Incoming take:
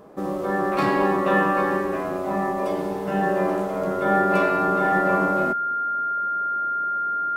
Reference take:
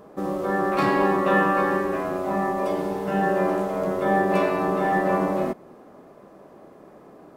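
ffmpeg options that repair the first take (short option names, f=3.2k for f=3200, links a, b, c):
-af "bandreject=f=1.4k:w=30"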